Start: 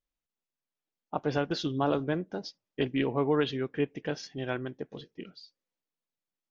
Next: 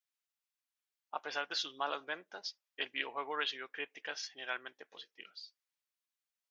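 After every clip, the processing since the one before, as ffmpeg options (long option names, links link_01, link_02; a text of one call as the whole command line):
ffmpeg -i in.wav -af "highpass=1200,volume=1dB" out.wav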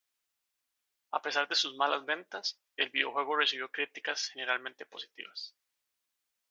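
ffmpeg -i in.wav -af "equalizer=frequency=160:width_type=o:width=0.27:gain=-9,volume=7.5dB" out.wav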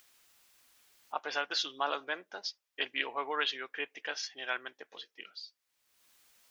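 ffmpeg -i in.wav -af "acompressor=mode=upward:threshold=-43dB:ratio=2.5,volume=-3.5dB" out.wav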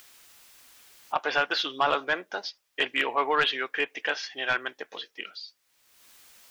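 ffmpeg -i in.wav -filter_complex "[0:a]aeval=exprs='0.224*(cos(1*acos(clip(val(0)/0.224,-1,1)))-cos(1*PI/2))+0.112*(cos(5*acos(clip(val(0)/0.224,-1,1)))-cos(5*PI/2))':channel_layout=same,acrossover=split=3700[link_01][link_02];[link_02]acompressor=threshold=-45dB:ratio=4:attack=1:release=60[link_03];[link_01][link_03]amix=inputs=2:normalize=0" out.wav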